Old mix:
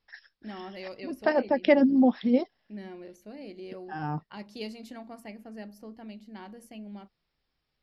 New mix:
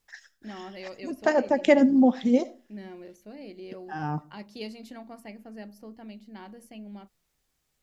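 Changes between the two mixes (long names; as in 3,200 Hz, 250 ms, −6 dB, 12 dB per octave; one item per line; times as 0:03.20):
second voice: remove linear-phase brick-wall low-pass 5,600 Hz
reverb: on, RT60 0.35 s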